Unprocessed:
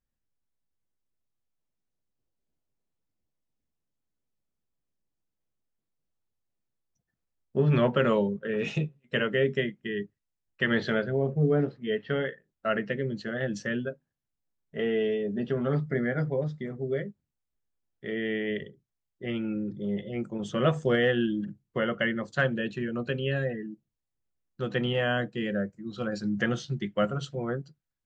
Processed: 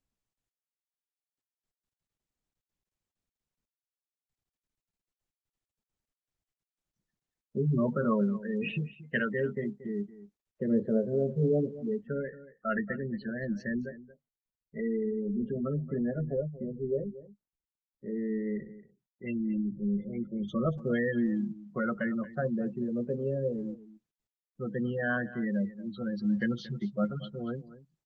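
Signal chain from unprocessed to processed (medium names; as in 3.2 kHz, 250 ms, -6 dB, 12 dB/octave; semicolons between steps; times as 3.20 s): spectral gate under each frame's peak -15 dB strong; LFO low-pass sine 0.16 Hz 520–4400 Hz; small resonant body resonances 210/1100/2700 Hz, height 9 dB, ringing for 40 ms; on a send: delay 230 ms -16.5 dB; on the sum: trim -7 dB; Opus 20 kbps 48 kHz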